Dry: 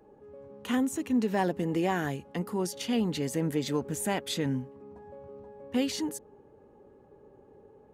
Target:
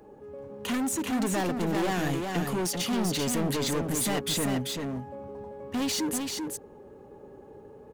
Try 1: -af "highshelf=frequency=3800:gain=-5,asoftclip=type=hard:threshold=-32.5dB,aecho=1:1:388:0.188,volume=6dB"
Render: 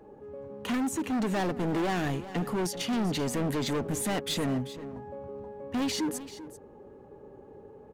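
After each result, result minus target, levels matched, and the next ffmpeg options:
echo-to-direct −10 dB; 8,000 Hz band −4.5 dB
-af "highshelf=frequency=3800:gain=-5,asoftclip=type=hard:threshold=-32.5dB,aecho=1:1:388:0.596,volume=6dB"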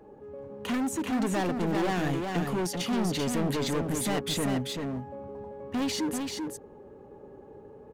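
8,000 Hz band −4.5 dB
-af "highshelf=frequency=3800:gain=4,asoftclip=type=hard:threshold=-32.5dB,aecho=1:1:388:0.596,volume=6dB"

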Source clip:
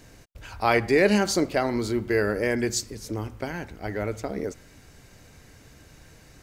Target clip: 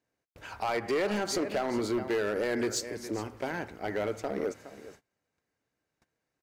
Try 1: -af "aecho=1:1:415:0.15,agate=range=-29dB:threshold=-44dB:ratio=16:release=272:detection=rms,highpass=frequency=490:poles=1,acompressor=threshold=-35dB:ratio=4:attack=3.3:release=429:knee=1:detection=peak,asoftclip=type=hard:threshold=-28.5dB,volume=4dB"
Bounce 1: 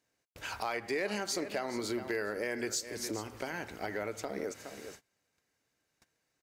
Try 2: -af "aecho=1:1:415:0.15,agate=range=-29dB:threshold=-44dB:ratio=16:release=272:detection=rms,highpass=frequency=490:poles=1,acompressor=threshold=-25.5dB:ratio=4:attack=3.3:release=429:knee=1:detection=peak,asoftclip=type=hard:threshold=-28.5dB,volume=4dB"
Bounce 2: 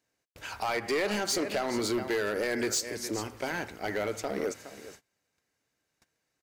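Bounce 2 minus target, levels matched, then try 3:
4,000 Hz band +3.5 dB
-af "aecho=1:1:415:0.15,agate=range=-29dB:threshold=-44dB:ratio=16:release=272:detection=rms,highpass=frequency=490:poles=1,highshelf=frequency=2200:gain=-10,acompressor=threshold=-25.5dB:ratio=4:attack=3.3:release=429:knee=1:detection=peak,asoftclip=type=hard:threshold=-28.5dB,volume=4dB"

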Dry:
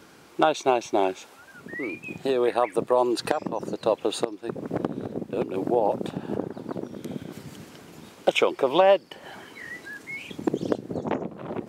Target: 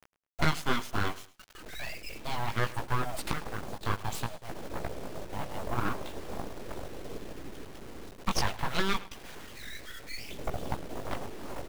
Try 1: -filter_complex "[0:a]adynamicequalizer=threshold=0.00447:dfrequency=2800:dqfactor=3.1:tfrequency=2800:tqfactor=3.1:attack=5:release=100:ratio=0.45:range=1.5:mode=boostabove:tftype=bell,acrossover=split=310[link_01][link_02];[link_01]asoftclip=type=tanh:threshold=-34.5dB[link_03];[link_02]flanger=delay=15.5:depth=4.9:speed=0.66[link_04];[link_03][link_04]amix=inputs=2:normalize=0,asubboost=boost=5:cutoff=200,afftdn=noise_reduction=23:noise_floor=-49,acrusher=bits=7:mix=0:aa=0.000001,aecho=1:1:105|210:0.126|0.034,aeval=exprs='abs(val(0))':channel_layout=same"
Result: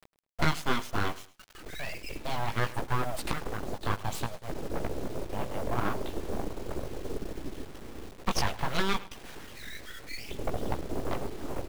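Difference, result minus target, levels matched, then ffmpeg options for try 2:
soft clipping: distortion −6 dB
-filter_complex "[0:a]adynamicequalizer=threshold=0.00447:dfrequency=2800:dqfactor=3.1:tfrequency=2800:tqfactor=3.1:attack=5:release=100:ratio=0.45:range=1.5:mode=boostabove:tftype=bell,acrossover=split=310[link_01][link_02];[link_01]asoftclip=type=tanh:threshold=-46dB[link_03];[link_02]flanger=delay=15.5:depth=4.9:speed=0.66[link_04];[link_03][link_04]amix=inputs=2:normalize=0,asubboost=boost=5:cutoff=200,afftdn=noise_reduction=23:noise_floor=-49,acrusher=bits=7:mix=0:aa=0.000001,aecho=1:1:105|210:0.126|0.034,aeval=exprs='abs(val(0))':channel_layout=same"

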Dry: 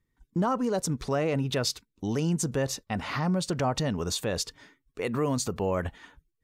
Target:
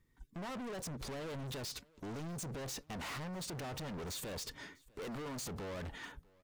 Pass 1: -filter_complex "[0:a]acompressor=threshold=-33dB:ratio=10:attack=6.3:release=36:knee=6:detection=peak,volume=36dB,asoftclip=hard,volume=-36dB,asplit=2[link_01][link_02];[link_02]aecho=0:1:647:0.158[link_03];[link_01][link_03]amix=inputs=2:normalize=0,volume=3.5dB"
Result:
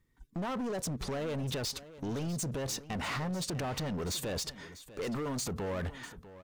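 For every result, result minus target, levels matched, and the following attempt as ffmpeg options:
echo-to-direct +10 dB; gain into a clipping stage and back: distortion −4 dB
-filter_complex "[0:a]acompressor=threshold=-33dB:ratio=10:attack=6.3:release=36:knee=6:detection=peak,volume=36dB,asoftclip=hard,volume=-36dB,asplit=2[link_01][link_02];[link_02]aecho=0:1:647:0.0501[link_03];[link_01][link_03]amix=inputs=2:normalize=0,volume=3.5dB"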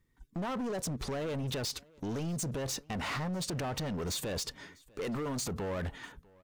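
gain into a clipping stage and back: distortion −4 dB
-filter_complex "[0:a]acompressor=threshold=-33dB:ratio=10:attack=6.3:release=36:knee=6:detection=peak,volume=45dB,asoftclip=hard,volume=-45dB,asplit=2[link_01][link_02];[link_02]aecho=0:1:647:0.0501[link_03];[link_01][link_03]amix=inputs=2:normalize=0,volume=3.5dB"

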